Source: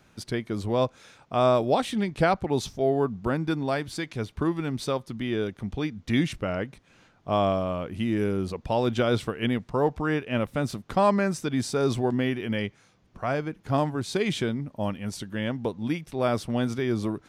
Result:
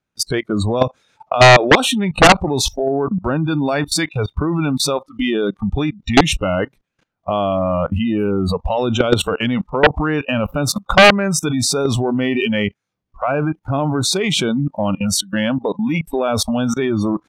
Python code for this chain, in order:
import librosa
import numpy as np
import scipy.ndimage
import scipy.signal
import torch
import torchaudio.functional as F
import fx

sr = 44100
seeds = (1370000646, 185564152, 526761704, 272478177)

y = fx.noise_reduce_blind(x, sr, reduce_db=27)
y = fx.level_steps(y, sr, step_db=21)
y = fx.fold_sine(y, sr, drive_db=12, ceiling_db=-11.5)
y = y * librosa.db_to_amplitude(8.5)